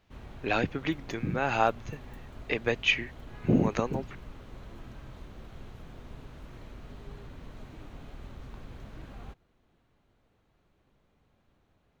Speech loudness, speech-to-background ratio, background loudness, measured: -29.0 LUFS, 19.0 dB, -48.0 LUFS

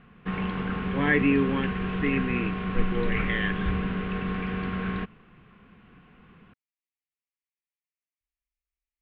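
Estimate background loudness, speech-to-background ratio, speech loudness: -30.0 LUFS, 2.0 dB, -28.0 LUFS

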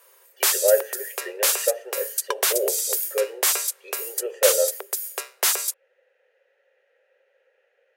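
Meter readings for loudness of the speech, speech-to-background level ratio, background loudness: -27.0 LUFS, -3.5 dB, -23.5 LUFS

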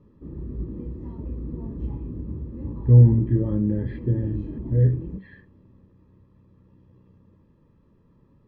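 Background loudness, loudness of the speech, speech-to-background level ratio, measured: -35.0 LUFS, -21.0 LUFS, 14.0 dB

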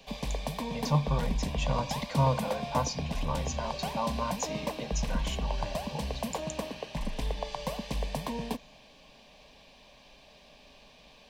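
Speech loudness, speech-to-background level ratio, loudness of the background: -34.0 LUFS, 1.5 dB, -35.5 LUFS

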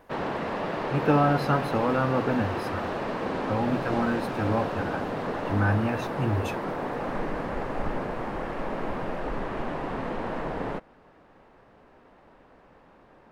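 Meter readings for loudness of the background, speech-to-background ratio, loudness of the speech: -31.5 LUFS, 4.0 dB, -27.5 LUFS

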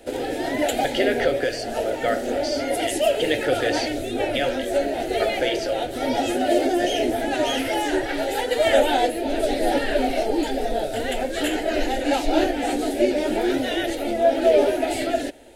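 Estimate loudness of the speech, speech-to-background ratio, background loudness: -26.5 LUFS, -3.5 dB, -23.0 LUFS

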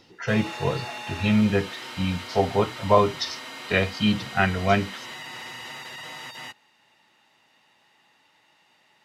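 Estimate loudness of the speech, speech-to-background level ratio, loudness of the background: -24.0 LUFS, 12.5 dB, -36.5 LUFS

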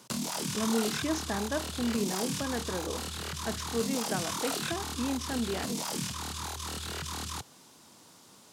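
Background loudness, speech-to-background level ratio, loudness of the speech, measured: -34.5 LUFS, -0.5 dB, -35.0 LUFS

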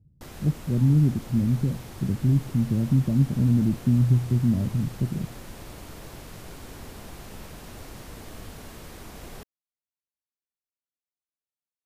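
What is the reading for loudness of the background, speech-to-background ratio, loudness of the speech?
-43.0 LUFS, 19.0 dB, -24.0 LUFS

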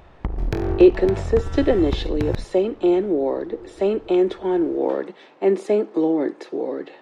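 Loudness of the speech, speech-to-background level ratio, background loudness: -21.0 LUFS, 7.5 dB, -28.5 LUFS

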